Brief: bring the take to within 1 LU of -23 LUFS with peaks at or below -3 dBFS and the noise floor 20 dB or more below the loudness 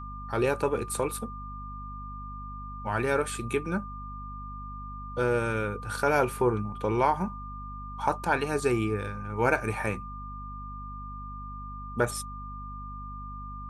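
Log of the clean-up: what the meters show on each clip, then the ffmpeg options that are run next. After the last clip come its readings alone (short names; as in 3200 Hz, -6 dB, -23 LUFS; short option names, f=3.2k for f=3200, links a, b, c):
hum 50 Hz; harmonics up to 250 Hz; hum level -39 dBFS; steady tone 1200 Hz; tone level -40 dBFS; loudness -31.0 LUFS; peak -9.0 dBFS; loudness target -23.0 LUFS
-> -af "bandreject=f=50:t=h:w=4,bandreject=f=100:t=h:w=4,bandreject=f=150:t=h:w=4,bandreject=f=200:t=h:w=4,bandreject=f=250:t=h:w=4"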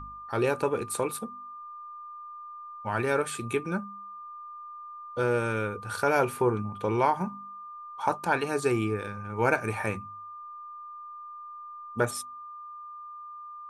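hum none; steady tone 1200 Hz; tone level -40 dBFS
-> -af "bandreject=f=1.2k:w=30"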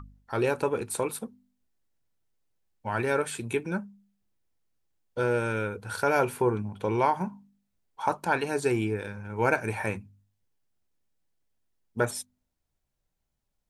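steady tone none; loudness -29.0 LUFS; peak -10.0 dBFS; loudness target -23.0 LUFS
-> -af "volume=6dB"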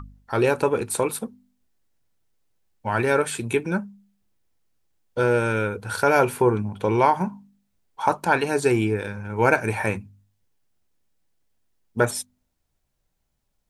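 loudness -23.0 LUFS; peak -4.0 dBFS; noise floor -74 dBFS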